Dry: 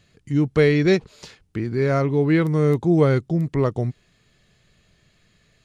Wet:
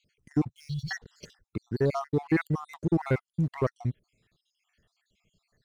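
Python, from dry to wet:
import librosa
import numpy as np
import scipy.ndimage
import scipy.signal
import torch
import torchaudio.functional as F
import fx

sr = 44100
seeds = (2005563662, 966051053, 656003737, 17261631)

y = fx.spec_dropout(x, sr, seeds[0], share_pct=66)
y = fx.leveller(y, sr, passes=1)
y = fx.ellip_bandstop(y, sr, low_hz=130.0, high_hz=4000.0, order=3, stop_db=40, at=(0.49, 0.91))
y = F.gain(torch.from_numpy(y), -6.0).numpy()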